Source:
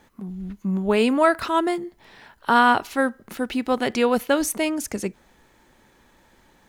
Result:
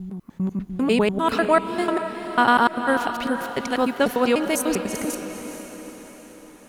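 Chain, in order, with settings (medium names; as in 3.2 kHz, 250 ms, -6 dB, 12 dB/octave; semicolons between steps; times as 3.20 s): slices played last to first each 99 ms, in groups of 4; echo that smears into a reverb 451 ms, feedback 53%, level -9 dB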